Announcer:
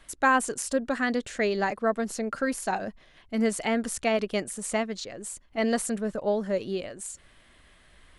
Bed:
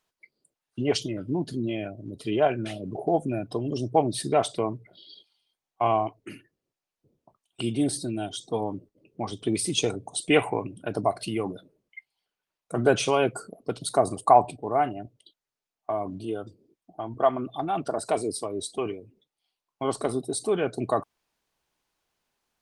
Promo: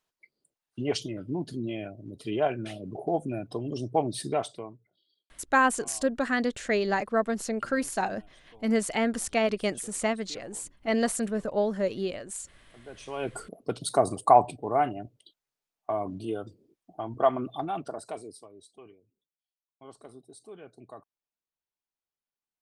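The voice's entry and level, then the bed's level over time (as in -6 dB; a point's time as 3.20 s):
5.30 s, 0.0 dB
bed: 4.30 s -4 dB
5.18 s -27.5 dB
12.85 s -27.5 dB
13.40 s -1 dB
17.53 s -1 dB
18.63 s -21 dB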